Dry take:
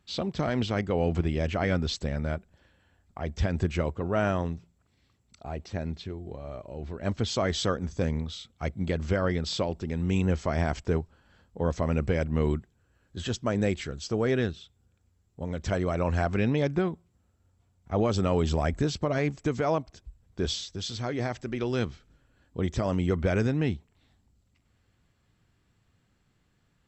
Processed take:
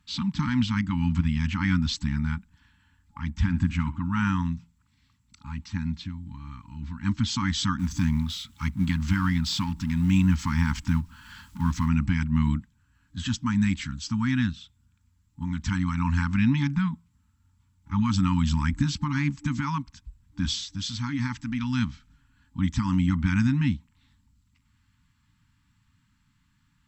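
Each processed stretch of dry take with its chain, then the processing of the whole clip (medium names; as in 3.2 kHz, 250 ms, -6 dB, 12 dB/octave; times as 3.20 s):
3.30–4.05 s: peaking EQ 5.3 kHz -6 dB 1.4 oct + flutter echo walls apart 11.7 m, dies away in 0.25 s
7.79–11.89 s: companding laws mixed up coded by mu + tape noise reduction on one side only encoder only
whole clip: FFT band-reject 300–840 Hz; dynamic bell 220 Hz, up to +4 dB, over -43 dBFS, Q 1.4; trim +2.5 dB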